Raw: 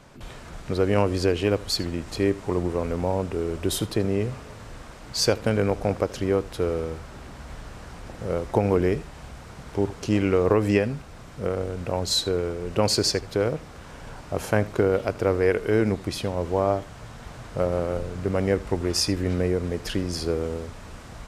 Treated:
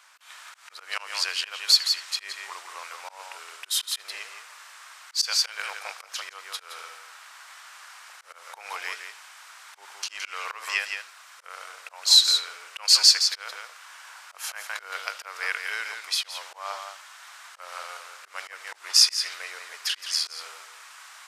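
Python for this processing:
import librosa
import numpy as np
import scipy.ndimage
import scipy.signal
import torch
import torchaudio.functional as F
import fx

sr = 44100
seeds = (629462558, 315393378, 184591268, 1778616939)

p1 = fx.high_shelf(x, sr, hz=9500.0, db=5.0)
p2 = p1 + fx.echo_single(p1, sr, ms=168, db=-6.5, dry=0)
p3 = fx.auto_swell(p2, sr, attack_ms=145.0)
p4 = fx.dynamic_eq(p3, sr, hz=4200.0, q=0.89, threshold_db=-44.0, ratio=4.0, max_db=7)
p5 = scipy.signal.sosfilt(scipy.signal.butter(4, 1100.0, 'highpass', fs=sr, output='sos'), p4)
y = p5 * 10.0 ** (1.5 / 20.0)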